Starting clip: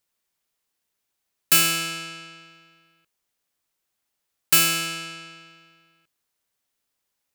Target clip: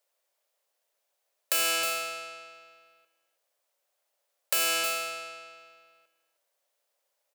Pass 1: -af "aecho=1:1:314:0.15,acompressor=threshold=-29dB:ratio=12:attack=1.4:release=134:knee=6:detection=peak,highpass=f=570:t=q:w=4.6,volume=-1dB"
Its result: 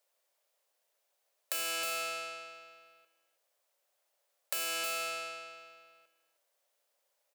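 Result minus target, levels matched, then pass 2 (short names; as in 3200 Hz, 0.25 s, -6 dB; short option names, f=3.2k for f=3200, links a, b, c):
compressor: peak gain reduction +9 dB
-af "aecho=1:1:314:0.15,acompressor=threshold=-19dB:ratio=12:attack=1.4:release=134:knee=6:detection=peak,highpass=f=570:t=q:w=4.6,volume=-1dB"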